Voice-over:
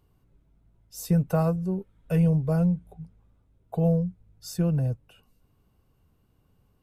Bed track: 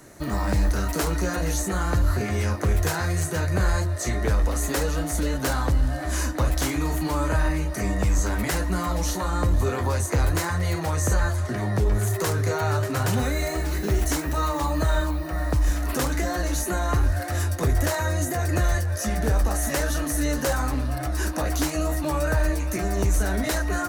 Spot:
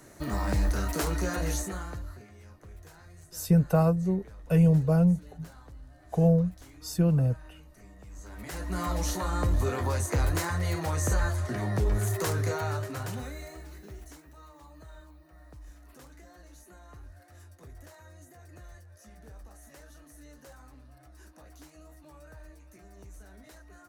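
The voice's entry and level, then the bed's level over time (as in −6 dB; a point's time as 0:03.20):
2.40 s, +1.0 dB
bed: 0:01.54 −4.5 dB
0:02.34 −27 dB
0:08.06 −27 dB
0:08.83 −4.5 dB
0:12.44 −4.5 dB
0:14.34 −27 dB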